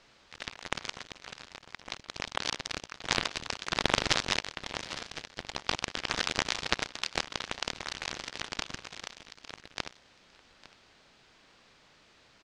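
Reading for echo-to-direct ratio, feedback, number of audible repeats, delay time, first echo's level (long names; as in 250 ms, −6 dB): −19.0 dB, repeats not evenly spaced, 1, 854 ms, −19.0 dB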